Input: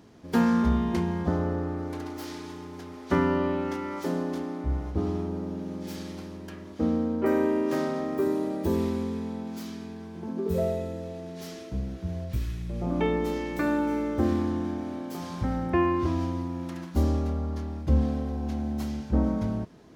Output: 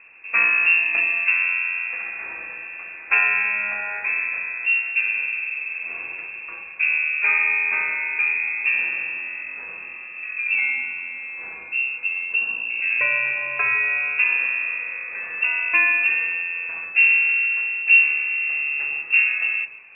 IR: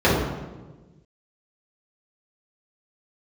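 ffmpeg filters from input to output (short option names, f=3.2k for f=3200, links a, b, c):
-filter_complex "[0:a]lowpass=f=2.4k:t=q:w=0.5098,lowpass=f=2.4k:t=q:w=0.6013,lowpass=f=2.4k:t=q:w=0.9,lowpass=f=2.4k:t=q:w=2.563,afreqshift=-2800,asplit=2[a][b];[1:a]atrim=start_sample=2205,afade=t=out:st=0.3:d=0.01,atrim=end_sample=13671[c];[b][c]afir=irnorm=-1:irlink=0,volume=-28dB[d];[a][d]amix=inputs=2:normalize=0,volume=6dB"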